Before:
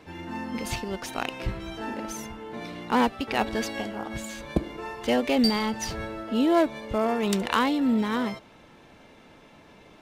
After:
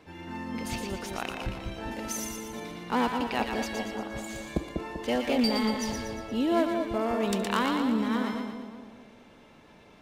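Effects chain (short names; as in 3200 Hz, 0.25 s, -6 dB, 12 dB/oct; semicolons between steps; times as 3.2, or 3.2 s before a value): 1.91–2.6 high shelf 3300 Hz +11 dB; split-band echo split 870 Hz, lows 0.195 s, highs 0.117 s, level -4.5 dB; gain -4.5 dB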